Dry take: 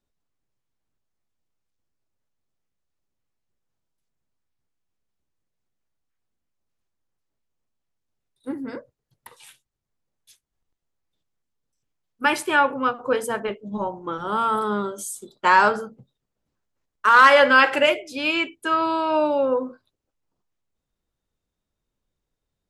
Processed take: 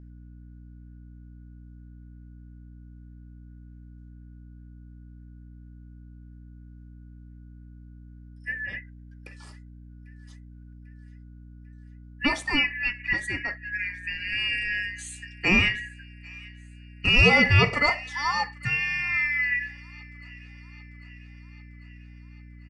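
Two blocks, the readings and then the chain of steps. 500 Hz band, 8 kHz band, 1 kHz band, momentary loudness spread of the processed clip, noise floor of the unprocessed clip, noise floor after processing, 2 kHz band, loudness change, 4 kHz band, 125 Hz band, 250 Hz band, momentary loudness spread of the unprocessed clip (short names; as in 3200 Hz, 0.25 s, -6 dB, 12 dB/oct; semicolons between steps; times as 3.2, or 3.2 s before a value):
-11.5 dB, -6.0 dB, -13.0 dB, 21 LU, -82 dBFS, -47 dBFS, -1.5 dB, -4.0 dB, +1.5 dB, +15.0 dB, -3.5 dB, 19 LU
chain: four-band scrambler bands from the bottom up 2143; dynamic EQ 2500 Hz, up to -4 dB, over -29 dBFS, Q 1.2; hum 60 Hz, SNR 16 dB; air absorption 51 m; downsampling 22050 Hz; thin delay 0.795 s, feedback 60%, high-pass 1600 Hz, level -22 dB; gain -1.5 dB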